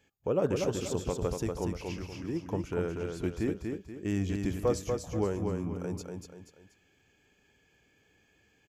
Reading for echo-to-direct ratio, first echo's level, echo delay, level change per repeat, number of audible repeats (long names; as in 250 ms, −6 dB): −4.0 dB, −4.5 dB, 240 ms, −8.5 dB, 3